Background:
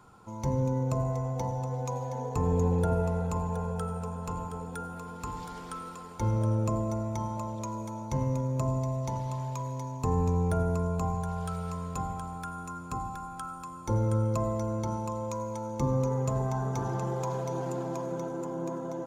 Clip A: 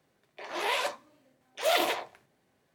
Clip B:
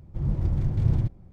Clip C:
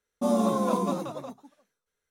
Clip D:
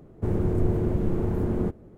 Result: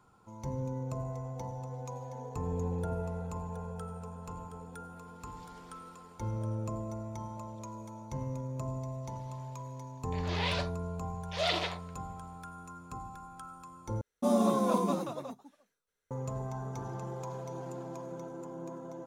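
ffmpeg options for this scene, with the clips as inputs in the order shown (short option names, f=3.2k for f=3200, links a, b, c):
-filter_complex "[0:a]volume=-8dB[a];[1:a]lowpass=f=4.7k:t=q:w=2.1[b];[a]asplit=2[c][d];[c]atrim=end=14.014[e];[3:a]atrim=end=2.1,asetpts=PTS-STARTPTS,volume=-2.5dB[f];[d]atrim=start=16.106[g];[b]atrim=end=2.74,asetpts=PTS-STARTPTS,volume=-6.5dB,afade=t=in:d=0.004:c=hsin,afade=t=out:st=2.736:d=0.004:c=hsin,adelay=9740[h];[e][f]acrossfade=d=0.004:c1=hsin:c2=hsin[i];[i][g]acrossfade=d=0.004:c1=hsin:c2=hsin[j];[j][h]amix=inputs=2:normalize=0"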